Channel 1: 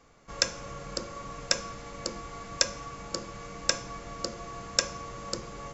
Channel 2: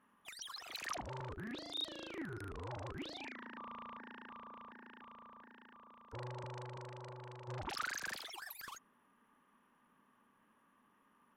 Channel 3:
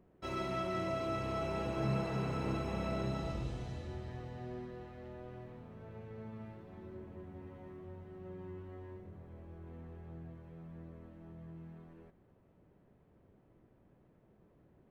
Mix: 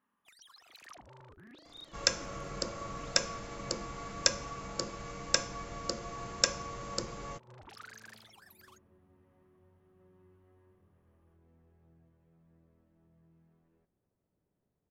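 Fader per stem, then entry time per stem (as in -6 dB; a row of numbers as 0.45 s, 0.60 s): -1.5 dB, -10.0 dB, -16.5 dB; 1.65 s, 0.00 s, 1.75 s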